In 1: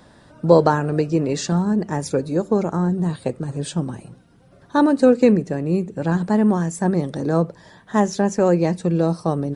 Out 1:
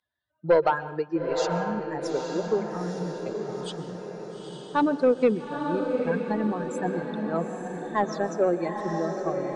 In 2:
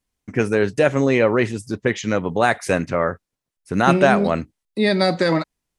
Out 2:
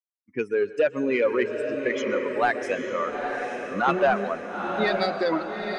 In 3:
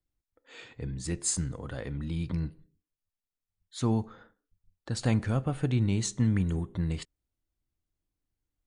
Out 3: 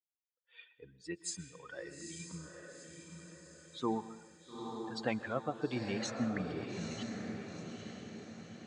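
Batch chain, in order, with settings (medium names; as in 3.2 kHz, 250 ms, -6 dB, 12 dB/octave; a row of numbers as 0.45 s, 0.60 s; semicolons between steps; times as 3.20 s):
expander on every frequency bin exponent 2; high-pass 370 Hz 12 dB/octave; treble shelf 6.4 kHz -12 dB; in parallel at -3 dB: compression, threshold -35 dBFS; on the sum: saturation -12 dBFS; distance through air 73 m; echo that smears into a reverb 881 ms, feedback 53%, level -5 dB; plate-style reverb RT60 0.84 s, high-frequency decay 0.9×, pre-delay 110 ms, DRR 16.5 dB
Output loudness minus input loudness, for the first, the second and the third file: -7.5 LU, -6.0 LU, -10.0 LU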